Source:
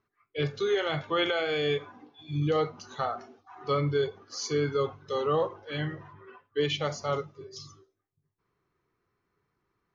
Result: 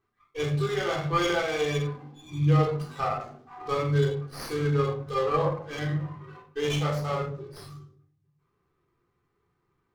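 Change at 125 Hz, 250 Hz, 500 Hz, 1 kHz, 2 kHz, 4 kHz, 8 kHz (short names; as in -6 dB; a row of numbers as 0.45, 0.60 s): +7.5 dB, +4.0 dB, 0.0 dB, +3.5 dB, +1.0 dB, -2.0 dB, n/a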